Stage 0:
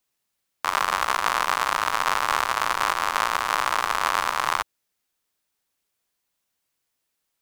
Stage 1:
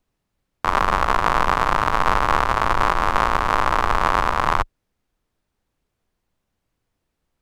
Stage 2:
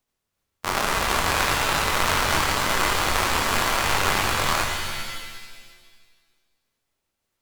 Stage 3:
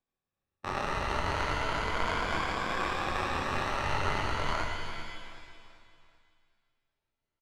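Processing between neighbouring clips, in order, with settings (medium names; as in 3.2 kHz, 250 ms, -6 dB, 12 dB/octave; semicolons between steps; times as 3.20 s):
tilt EQ -4 dB/octave; trim +5 dB
spectral contrast reduction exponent 0.51; chorus voices 2, 0.49 Hz, delay 25 ms, depth 4.9 ms; pitch-shifted reverb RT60 1.5 s, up +7 st, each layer -2 dB, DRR 4.5 dB; trim -3.5 dB
drifting ripple filter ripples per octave 1.8, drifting +0.35 Hz, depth 8 dB; tape spacing loss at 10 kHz 21 dB; feedback delay 385 ms, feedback 42%, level -15 dB; trim -7 dB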